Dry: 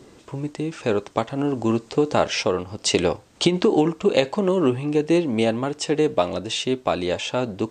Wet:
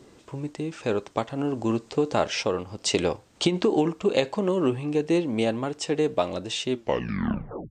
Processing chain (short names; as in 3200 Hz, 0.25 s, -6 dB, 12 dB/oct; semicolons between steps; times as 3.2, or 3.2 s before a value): tape stop at the end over 1.00 s; gain -4 dB